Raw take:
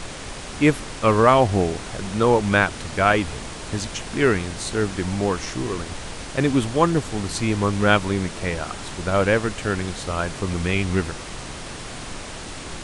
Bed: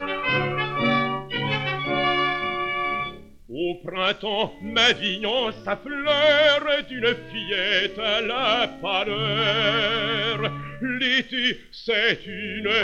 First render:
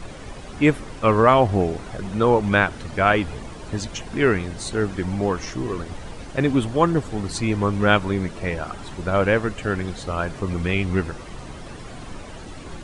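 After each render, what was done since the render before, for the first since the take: denoiser 11 dB, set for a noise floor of -35 dBFS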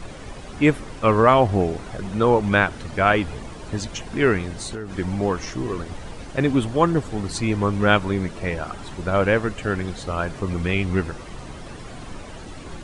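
4.54–4.96 compressor 12:1, threshold -26 dBFS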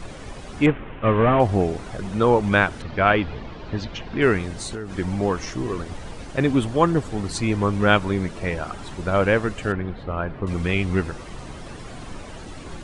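0.66–1.4 CVSD 16 kbps; 2.82–4.22 LPF 4500 Hz 24 dB/oct; 9.72–10.47 air absorption 440 m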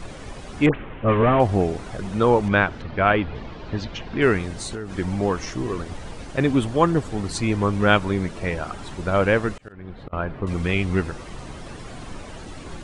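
0.69–1.23 dispersion highs, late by 62 ms, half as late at 1500 Hz; 2.48–3.35 air absorption 130 m; 9.52–10.13 auto swell 0.466 s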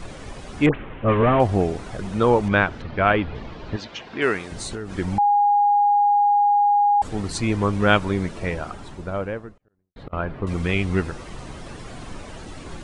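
3.76–4.52 HPF 450 Hz 6 dB/oct; 5.18–7.02 bleep 820 Hz -14 dBFS; 8.3–9.96 studio fade out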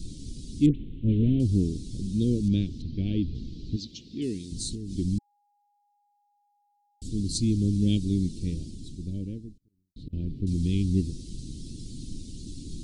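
elliptic band-stop 290–4100 Hz, stop band 80 dB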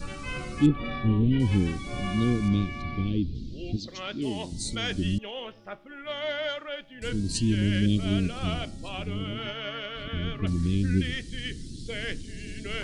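add bed -14 dB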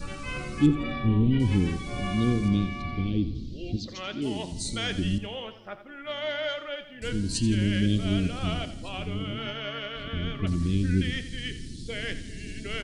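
feedback echo 85 ms, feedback 46%, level -13 dB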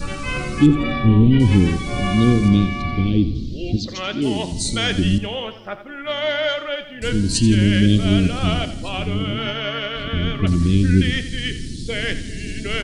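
gain +9.5 dB; limiter -3 dBFS, peak gain reduction 2.5 dB

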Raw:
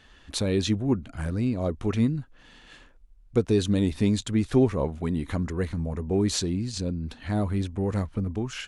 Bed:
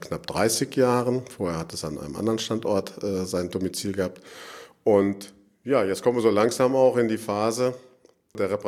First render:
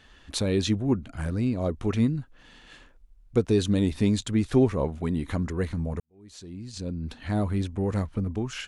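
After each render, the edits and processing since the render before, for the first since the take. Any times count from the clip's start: 6–7.07 fade in quadratic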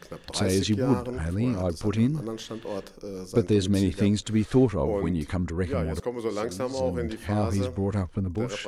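add bed -9.5 dB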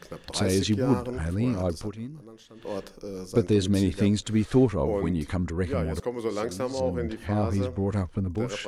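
1.78–2.69 dip -14 dB, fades 0.14 s; 6.8–7.87 high shelf 4200 Hz -8 dB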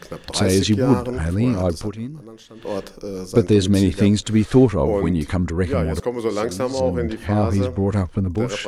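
gain +7 dB

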